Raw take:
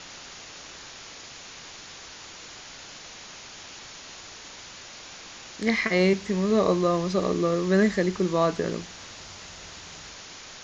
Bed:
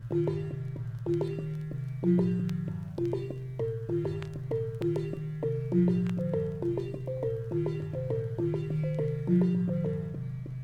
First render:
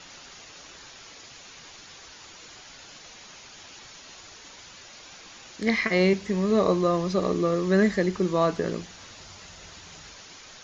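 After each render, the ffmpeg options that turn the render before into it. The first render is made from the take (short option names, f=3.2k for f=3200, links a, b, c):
-af "afftdn=nr=6:nf=-44"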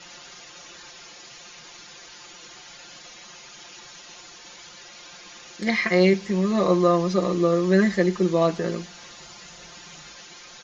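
-af "lowshelf=f=100:g=-7.5,aecho=1:1:5.7:0.82"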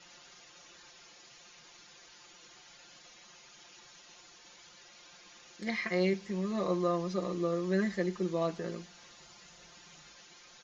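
-af "volume=-11.5dB"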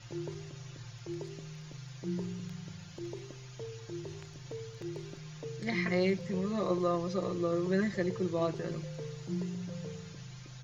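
-filter_complex "[1:a]volume=-11dB[a];[0:a][a]amix=inputs=2:normalize=0"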